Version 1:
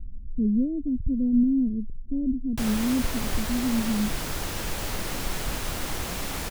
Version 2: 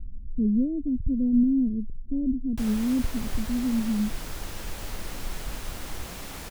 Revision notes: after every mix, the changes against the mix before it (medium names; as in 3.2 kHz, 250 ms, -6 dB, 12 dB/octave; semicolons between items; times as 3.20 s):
background -7.0 dB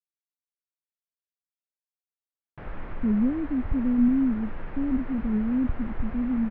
speech: entry +2.65 s; master: add low-pass 2 kHz 24 dB/octave